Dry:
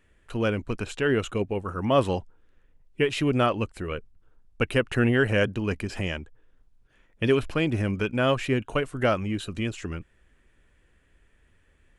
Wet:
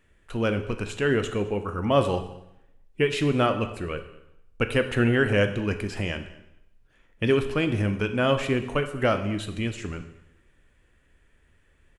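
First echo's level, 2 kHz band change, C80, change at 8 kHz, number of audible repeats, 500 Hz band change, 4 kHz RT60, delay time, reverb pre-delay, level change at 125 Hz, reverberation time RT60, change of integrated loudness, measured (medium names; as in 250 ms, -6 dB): -23.0 dB, +0.5 dB, 13.0 dB, +0.5 dB, 1, +1.0 dB, 0.75 s, 213 ms, 8 ms, +1.0 dB, 0.80 s, +0.5 dB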